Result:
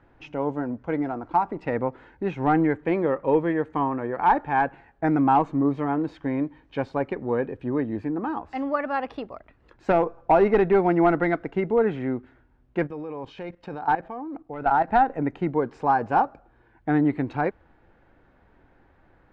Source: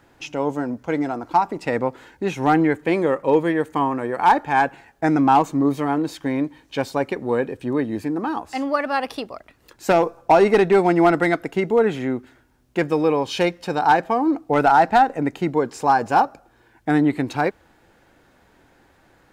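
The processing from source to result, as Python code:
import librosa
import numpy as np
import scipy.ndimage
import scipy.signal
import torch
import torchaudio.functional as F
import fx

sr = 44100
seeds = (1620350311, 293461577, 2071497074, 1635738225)

y = scipy.signal.sosfilt(scipy.signal.butter(2, 2100.0, 'lowpass', fs=sr, output='sos'), x)
y = fx.level_steps(y, sr, step_db=15, at=(12.86, 14.87), fade=0.02)
y = fx.low_shelf(y, sr, hz=67.0, db=11.5)
y = y * librosa.db_to_amplitude(-4.0)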